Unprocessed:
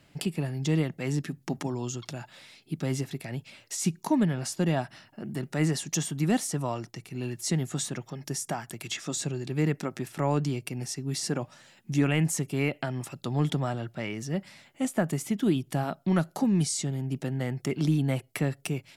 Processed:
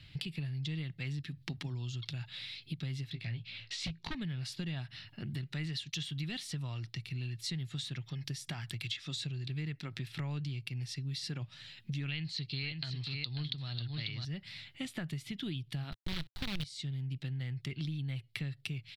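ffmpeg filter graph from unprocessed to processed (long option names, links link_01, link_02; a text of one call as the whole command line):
ffmpeg -i in.wav -filter_complex "[0:a]asettb=1/sr,asplit=3[link_01][link_02][link_03];[link_01]atrim=end=3.124[link_04];[link_02]atrim=start=3.12:end=4.15,asetpts=PTS-STARTPTS,afade=type=in:duration=0.004:curve=qsin,afade=type=out:start_time=1.026:duration=0.004:curve=qsin,lowpass=4700,asplit=2[link_05][link_06];[link_06]adelay=18,volume=-5.5dB[link_07];[link_05][link_07]amix=inputs=2:normalize=0,atrim=end_sample=45423,aeval=exprs='0.0794*(abs(mod(val(0)/0.0794+3,4)-2)-1)':channel_layout=same[link_08];[link_03]atrim=start=4.146[link_09];[link_04][link_08]acrossfade=duration=0.004:curve1=hsin:curve2=qsin[link_10];[link_10][link_09]acrossfade=duration=0.004:curve1=qsin:curve2=hsin,asettb=1/sr,asplit=3[link_11][link_12][link_13];[link_11]atrim=end=5.644[link_14];[link_12]atrim=start=5.64:end=6.43,asetpts=PTS-STARTPTS,afade=type=in:duration=0.004:curve=qsin,afade=type=out:start_time=0.786:duration=0.004:curve=qsin,equalizer=frequency=3300:width_type=o:width=1.1:gain=4.5,agate=range=-33dB:threshold=-37dB:ratio=3:release=100:detection=peak[link_15];[link_13]atrim=start=6.426[link_16];[link_14][link_15]acrossfade=duration=0.004:curve1=hsin:curve2=qsin[link_17];[link_17][link_16]acrossfade=duration=0.004:curve1=qsin:curve2=hsin,asettb=1/sr,asplit=3[link_18][link_19][link_20];[link_18]atrim=end=12.084[link_21];[link_19]atrim=start=12.08:end=14.25,asetpts=PTS-STARTPTS,afade=type=in:duration=0.004:curve=qsin,afade=type=out:start_time=2.166:duration=0.004:curve=qsin,lowpass=frequency=4300:width_type=q:width=9.8,aecho=1:1:543:0.422,atrim=end_sample=95697[link_22];[link_20]atrim=start=14.246[link_23];[link_21][link_22]acrossfade=duration=0.004:curve1=hsin:curve2=qsin[link_24];[link_24][link_23]acrossfade=duration=0.004:curve1=qsin:curve2=hsin,asettb=1/sr,asplit=3[link_25][link_26][link_27];[link_25]atrim=end=15.924[link_28];[link_26]atrim=start=15.92:end=16.64,asetpts=PTS-STARTPTS,afade=type=in:duration=0.004:curve=qsin,afade=type=out:start_time=0.716:duration=0.004:curve=qsin,equalizer=frequency=68:width=0.69:gain=13,acrusher=bits=4:dc=4:mix=0:aa=0.000001[link_29];[link_27]atrim=start=16.636[link_30];[link_28][link_29]acrossfade=duration=0.004:curve1=hsin:curve2=qsin[link_31];[link_31][link_30]acrossfade=duration=0.004:curve1=qsin:curve2=hsin,firequalizer=gain_entry='entry(110,0);entry(200,-16);entry(610,-23);entry(2000,-7);entry(3900,1);entry(6400,-19)':delay=0.05:min_phase=1,acompressor=threshold=-47dB:ratio=6,volume=10.5dB" out.wav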